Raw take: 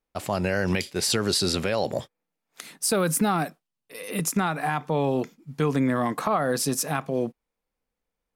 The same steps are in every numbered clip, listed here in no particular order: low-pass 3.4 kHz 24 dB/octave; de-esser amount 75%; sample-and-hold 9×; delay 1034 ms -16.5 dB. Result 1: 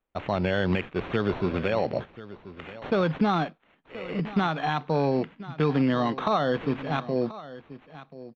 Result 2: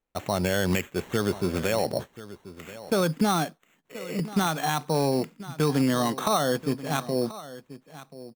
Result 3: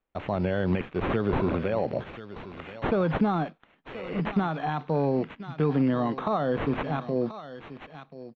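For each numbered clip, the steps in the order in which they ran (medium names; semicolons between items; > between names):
de-esser > delay > sample-and-hold > low-pass; de-esser > low-pass > sample-and-hold > delay; delay > sample-and-hold > de-esser > low-pass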